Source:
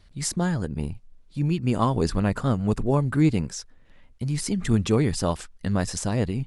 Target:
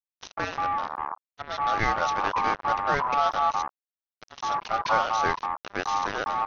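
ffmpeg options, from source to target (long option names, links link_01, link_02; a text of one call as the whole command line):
ffmpeg -i in.wav -filter_complex "[0:a]acrossover=split=270[link_01][link_02];[link_01]adelay=210[link_03];[link_03][link_02]amix=inputs=2:normalize=0,acontrast=54,aresample=11025,acrusher=bits=3:mix=0:aa=0.5,aresample=44100,aeval=exprs='val(0)*sin(2*PI*1000*n/s)':channel_layout=same,volume=-4.5dB" out.wav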